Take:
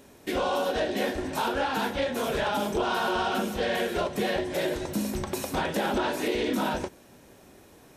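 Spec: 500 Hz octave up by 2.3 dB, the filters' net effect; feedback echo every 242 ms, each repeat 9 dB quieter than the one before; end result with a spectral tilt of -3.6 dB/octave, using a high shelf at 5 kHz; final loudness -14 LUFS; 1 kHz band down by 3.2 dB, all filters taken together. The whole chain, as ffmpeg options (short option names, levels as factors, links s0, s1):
-af "equalizer=f=500:t=o:g=4.5,equalizer=f=1000:t=o:g=-6,highshelf=f=5000:g=-4.5,aecho=1:1:242|484|726|968:0.355|0.124|0.0435|0.0152,volume=4.73"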